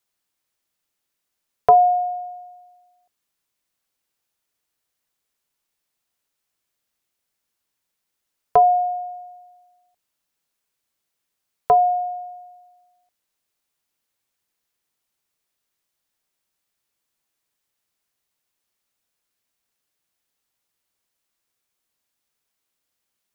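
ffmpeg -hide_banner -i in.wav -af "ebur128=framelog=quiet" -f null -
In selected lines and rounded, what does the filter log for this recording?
Integrated loudness:
  I:         -18.8 LUFS
  Threshold: -32.2 LUFS
Loudness range:
  LRA:         6.9 LU
  Threshold: -46.0 LUFS
  LRA low:   -30.4 LUFS
  LRA high:  -23.5 LUFS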